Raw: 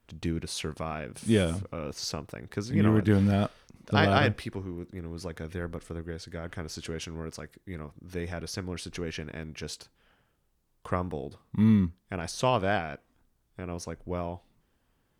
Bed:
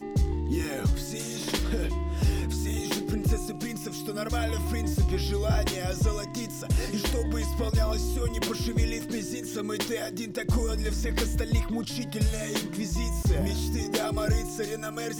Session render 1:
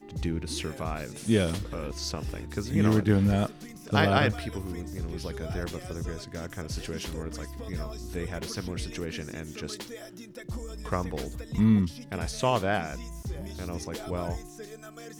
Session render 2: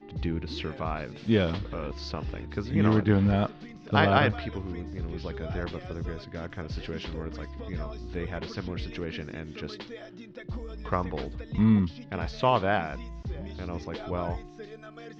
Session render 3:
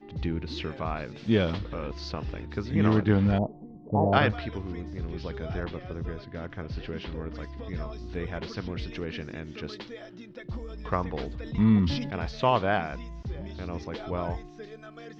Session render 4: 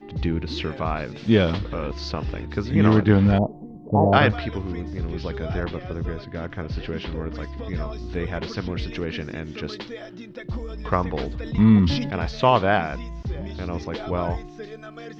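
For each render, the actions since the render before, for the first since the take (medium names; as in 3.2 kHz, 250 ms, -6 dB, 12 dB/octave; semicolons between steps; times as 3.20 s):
add bed -11 dB
inverse Chebyshev low-pass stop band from 9.7 kHz, stop band 50 dB; dynamic bell 980 Hz, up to +4 dB, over -42 dBFS, Q 1.4
3.38–4.13 s: elliptic low-pass 900 Hz; 5.60–7.36 s: distance through air 130 m; 11.20–12.11 s: decay stretcher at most 48 dB/s
trim +6 dB; peak limiter -3 dBFS, peak gain reduction 2 dB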